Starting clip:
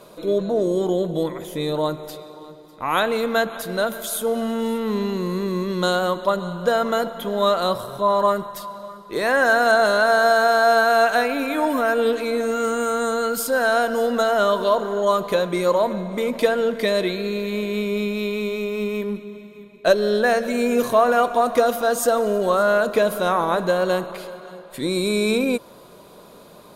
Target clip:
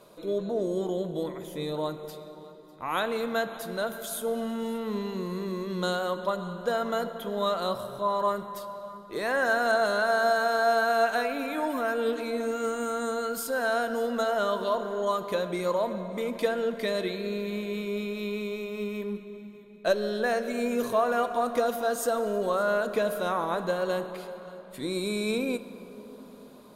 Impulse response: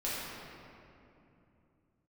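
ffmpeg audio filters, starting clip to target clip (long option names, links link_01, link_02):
-filter_complex "[0:a]asplit=2[link_01][link_02];[1:a]atrim=start_sample=2205,asetrate=31752,aresample=44100,adelay=9[link_03];[link_02][link_03]afir=irnorm=-1:irlink=0,volume=-20.5dB[link_04];[link_01][link_04]amix=inputs=2:normalize=0,volume=-8.5dB"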